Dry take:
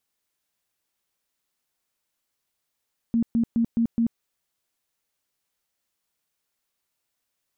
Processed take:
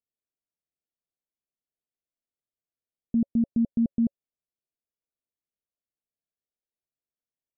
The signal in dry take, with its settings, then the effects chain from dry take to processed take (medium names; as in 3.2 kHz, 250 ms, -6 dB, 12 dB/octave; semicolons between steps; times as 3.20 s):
tone bursts 231 Hz, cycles 20, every 0.21 s, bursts 5, -18 dBFS
steep low-pass 710 Hz 72 dB/octave; band-stop 560 Hz, Q 18; upward expansion 1.5:1, over -44 dBFS